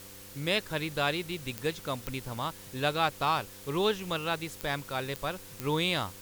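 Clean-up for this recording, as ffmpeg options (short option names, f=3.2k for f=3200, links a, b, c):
-af "adeclick=t=4,bandreject=f=97.7:t=h:w=4,bandreject=f=195.4:t=h:w=4,bandreject=f=293.1:t=h:w=4,bandreject=f=390.8:t=h:w=4,bandreject=f=488.5:t=h:w=4,bandreject=f=520:w=30,afftdn=nr=28:nf=-48"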